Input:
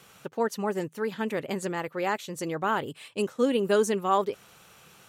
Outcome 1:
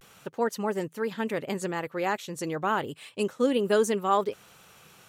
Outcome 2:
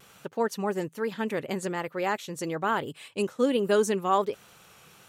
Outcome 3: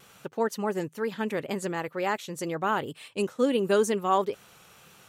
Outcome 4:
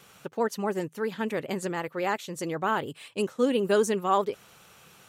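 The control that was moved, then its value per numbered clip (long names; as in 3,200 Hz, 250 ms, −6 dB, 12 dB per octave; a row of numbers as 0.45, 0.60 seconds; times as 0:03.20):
pitch vibrato, speed: 0.32, 1.2, 2.1, 15 Hertz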